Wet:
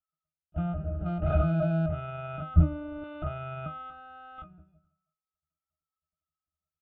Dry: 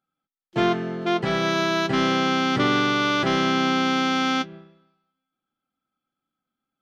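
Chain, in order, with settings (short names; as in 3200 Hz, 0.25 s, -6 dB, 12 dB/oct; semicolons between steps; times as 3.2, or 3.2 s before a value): 3.9–4.38 self-modulated delay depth 0.2 ms; LPC vocoder at 8 kHz pitch kept; comb 1.4 ms, depth 82%; 1.01–1.86 sample leveller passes 2; air absorption 95 m; octave resonator D#, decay 0.21 s; 2.54–3.04 tilt -3 dB/oct; gain +3.5 dB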